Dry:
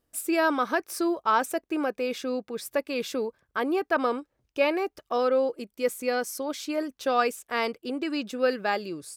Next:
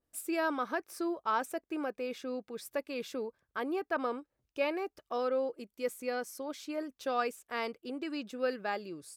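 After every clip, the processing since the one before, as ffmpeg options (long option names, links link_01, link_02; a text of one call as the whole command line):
ffmpeg -i in.wav -af "adynamicequalizer=threshold=0.00794:dfrequency=2700:dqfactor=0.7:tfrequency=2700:tqfactor=0.7:attack=5:release=100:ratio=0.375:range=2.5:mode=cutabove:tftype=highshelf,volume=-8dB" out.wav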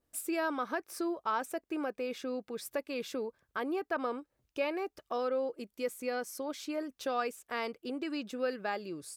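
ffmpeg -i in.wav -af "acompressor=threshold=-42dB:ratio=1.5,volume=4dB" out.wav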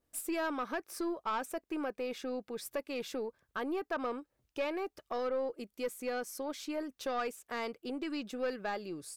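ffmpeg -i in.wav -af "aeval=exprs='(tanh(20*val(0)+0.2)-tanh(0.2))/20':channel_layout=same" out.wav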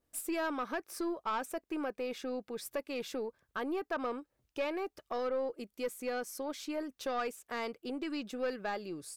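ffmpeg -i in.wav -af anull out.wav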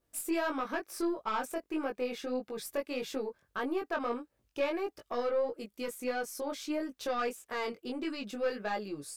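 ffmpeg -i in.wav -af "flanger=delay=18.5:depth=3:speed=1.6,volume=5dB" out.wav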